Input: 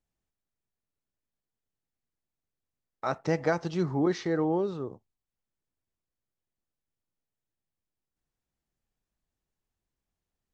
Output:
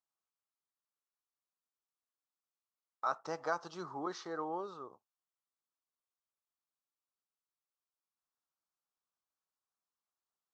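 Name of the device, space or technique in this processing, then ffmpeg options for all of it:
piezo pickup straight into a mixer: -af "lowpass=5400,aderivative,highshelf=f=1600:t=q:w=3:g=-9.5,volume=3.16"

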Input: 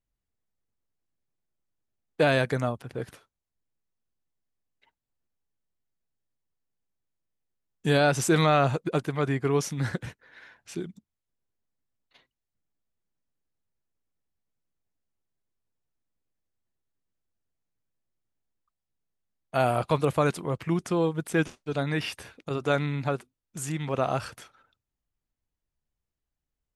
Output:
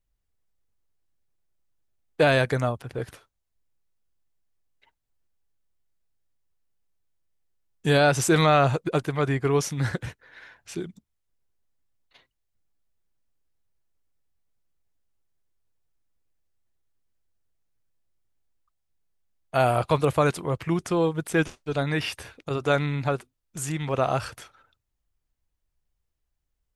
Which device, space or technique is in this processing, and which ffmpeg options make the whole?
low shelf boost with a cut just above: -af "lowshelf=f=74:g=7,equalizer=f=210:t=o:w=1:g=-4.5,volume=1.41"

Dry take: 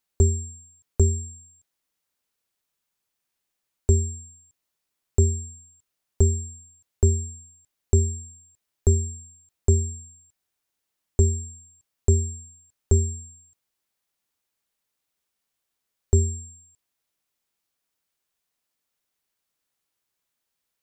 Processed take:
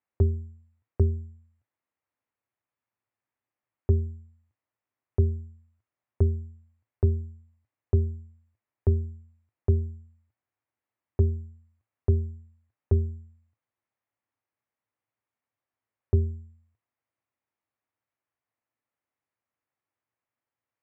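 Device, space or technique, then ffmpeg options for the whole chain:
bass cabinet: -af "highpass=88,equalizer=f=110:t=q:w=4:g=9,equalizer=f=170:t=q:w=4:g=-9,equalizer=f=420:t=q:w=4:g=-4,equalizer=f=1500:t=q:w=4:g=-4,lowpass=f=2100:w=0.5412,lowpass=f=2100:w=1.3066,volume=0.841"

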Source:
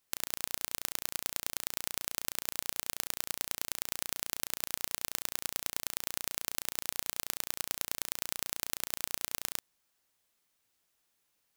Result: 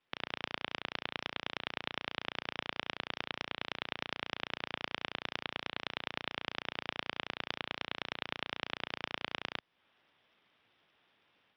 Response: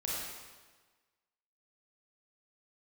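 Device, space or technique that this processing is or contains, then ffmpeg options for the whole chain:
Bluetooth headset: -af "highpass=100,dynaudnorm=f=120:g=3:m=3.16,aresample=8000,aresample=44100,volume=1.26" -ar 44100 -c:a sbc -b:a 64k

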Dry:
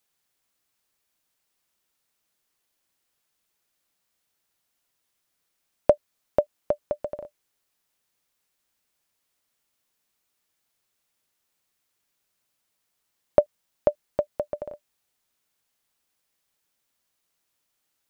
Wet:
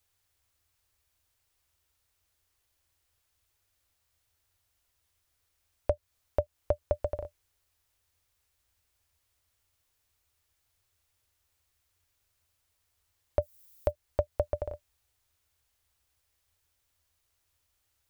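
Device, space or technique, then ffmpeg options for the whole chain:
car stereo with a boomy subwoofer: -filter_complex "[0:a]lowshelf=f=120:t=q:w=3:g=12.5,alimiter=limit=0.237:level=0:latency=1:release=226,asplit=3[s0][s1][s2];[s0]afade=t=out:st=13.41:d=0.02[s3];[s1]aemphasis=mode=production:type=75fm,afade=t=in:st=13.41:d=0.02,afade=t=out:st=13.9:d=0.02[s4];[s2]afade=t=in:st=13.9:d=0.02[s5];[s3][s4][s5]amix=inputs=3:normalize=0"

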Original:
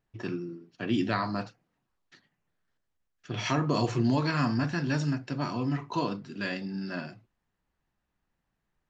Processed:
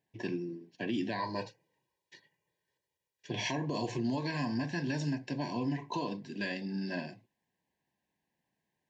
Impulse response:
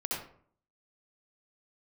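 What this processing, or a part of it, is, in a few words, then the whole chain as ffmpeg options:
PA system with an anti-feedback notch: -filter_complex "[0:a]asettb=1/sr,asplit=3[s0][s1][s2];[s0]atrim=end=1.194[s3];[s1]atrim=start=1.19:end=3.31,asetpts=PTS-STARTPTS,afade=t=in:d=0.004:c=qsin,afade=t=out:st=2.116:d=0.004:c=qsin,aecho=1:1:2.1:0.7,atrim=end_sample=93492[s4];[s2]atrim=start=3.306[s5];[s3][s4]acrossfade=d=0.004:c1=hsin:c2=qsin[s6];[s6][s5]acrossfade=d=0.004:c1=qsin:c2=hsin,highpass=150,asuperstop=centerf=1300:order=12:qfactor=2.8,alimiter=level_in=1.06:limit=0.0631:level=0:latency=1:release=202,volume=0.944"

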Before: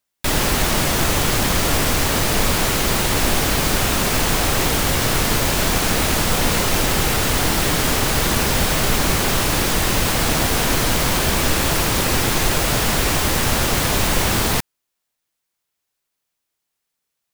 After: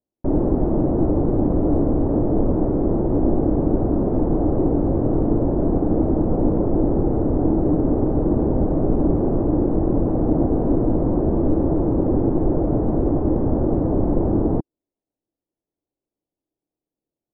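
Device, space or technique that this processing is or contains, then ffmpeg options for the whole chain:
under water: -af "lowpass=f=680:w=0.5412,lowpass=f=680:w=1.3066,equalizer=f=310:t=o:w=0.56:g=10.5"

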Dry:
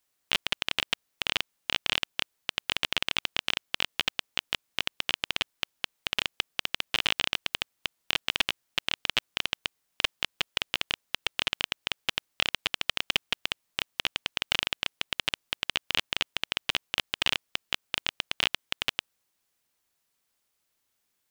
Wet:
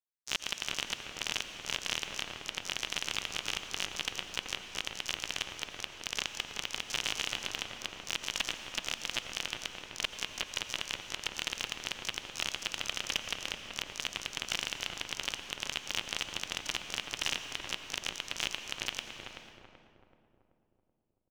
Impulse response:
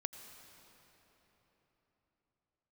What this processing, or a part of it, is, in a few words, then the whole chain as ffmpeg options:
shimmer-style reverb: -filter_complex "[0:a]asplit=2[s0][s1];[s1]asetrate=88200,aresample=44100,atempo=0.5,volume=0.447[s2];[s0][s2]amix=inputs=2:normalize=0[s3];[1:a]atrim=start_sample=2205[s4];[s3][s4]afir=irnorm=-1:irlink=0,agate=range=0.0891:threshold=0.00316:ratio=16:detection=peak,asplit=2[s5][s6];[s6]adelay=381,lowpass=f=1000:p=1,volume=0.708,asplit=2[s7][s8];[s8]adelay=381,lowpass=f=1000:p=1,volume=0.54,asplit=2[s9][s10];[s10]adelay=381,lowpass=f=1000:p=1,volume=0.54,asplit=2[s11][s12];[s12]adelay=381,lowpass=f=1000:p=1,volume=0.54,asplit=2[s13][s14];[s14]adelay=381,lowpass=f=1000:p=1,volume=0.54,asplit=2[s15][s16];[s16]adelay=381,lowpass=f=1000:p=1,volume=0.54,asplit=2[s17][s18];[s18]adelay=381,lowpass=f=1000:p=1,volume=0.54[s19];[s5][s7][s9][s11][s13][s15][s17][s19]amix=inputs=8:normalize=0,volume=0.562"

